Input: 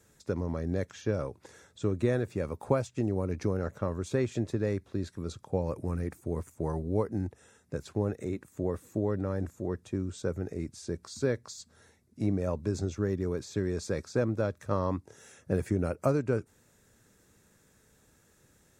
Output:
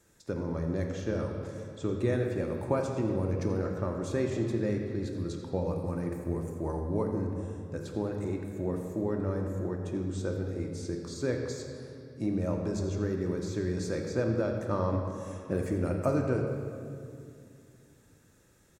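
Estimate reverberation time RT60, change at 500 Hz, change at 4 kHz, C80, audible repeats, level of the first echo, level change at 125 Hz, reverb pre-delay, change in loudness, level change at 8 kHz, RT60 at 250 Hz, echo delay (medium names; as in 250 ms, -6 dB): 2.4 s, 0.0 dB, 0.0 dB, 4.5 dB, 1, -13.5 dB, 0.0 dB, 3 ms, 0.0 dB, -1.0 dB, 3.2 s, 85 ms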